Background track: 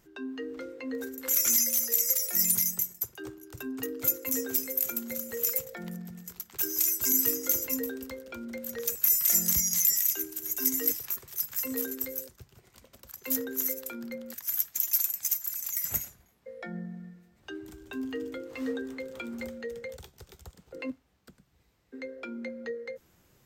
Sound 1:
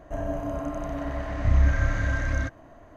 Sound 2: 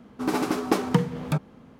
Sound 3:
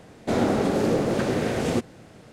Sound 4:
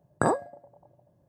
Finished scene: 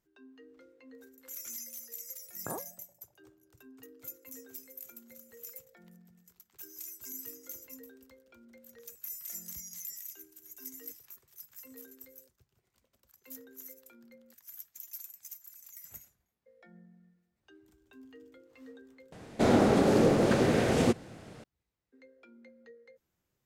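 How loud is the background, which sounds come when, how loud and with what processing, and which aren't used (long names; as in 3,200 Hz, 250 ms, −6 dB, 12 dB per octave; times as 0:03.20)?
background track −18 dB
0:02.25: mix in 4 −16 dB
0:19.12: overwrite with 3 −1 dB
not used: 1, 2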